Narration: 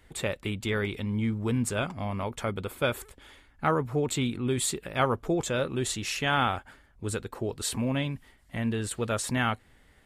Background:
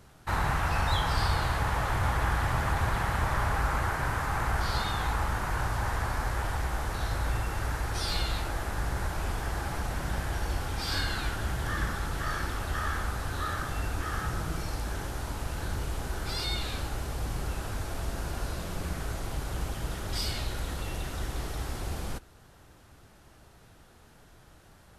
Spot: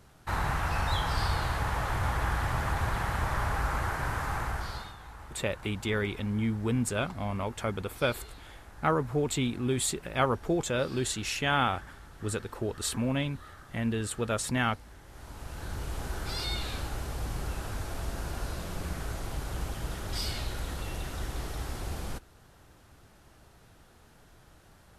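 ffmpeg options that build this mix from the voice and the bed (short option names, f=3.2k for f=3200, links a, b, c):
-filter_complex "[0:a]adelay=5200,volume=-1dB[a];[1:a]volume=14dB,afade=t=out:st=4.31:d=0.65:silence=0.16788,afade=t=in:st=15.05:d=0.99:silence=0.158489[b];[a][b]amix=inputs=2:normalize=0"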